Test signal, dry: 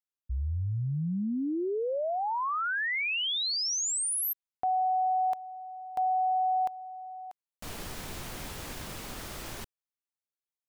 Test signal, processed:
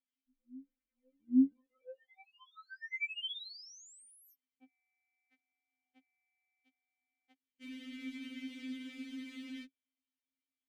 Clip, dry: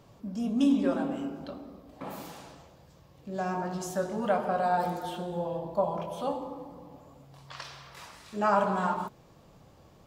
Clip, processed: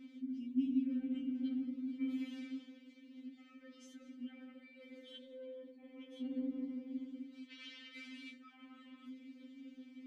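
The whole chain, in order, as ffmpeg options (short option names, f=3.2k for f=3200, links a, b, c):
-filter_complex "[0:a]areverse,acompressor=threshold=-40dB:ratio=16:attack=0.25:release=161:knee=6:detection=peak,areverse,asoftclip=type=tanh:threshold=-38dB,asplit=3[a][b][c];[a]bandpass=f=270:t=q:w=8,volume=0dB[d];[b]bandpass=f=2.29k:t=q:w=8,volume=-6dB[e];[c]bandpass=f=3.01k:t=q:w=8,volume=-9dB[f];[d][e][f]amix=inputs=3:normalize=0,afftfilt=real='re*3.46*eq(mod(b,12),0)':imag='im*3.46*eq(mod(b,12),0)':win_size=2048:overlap=0.75,volume=15.5dB"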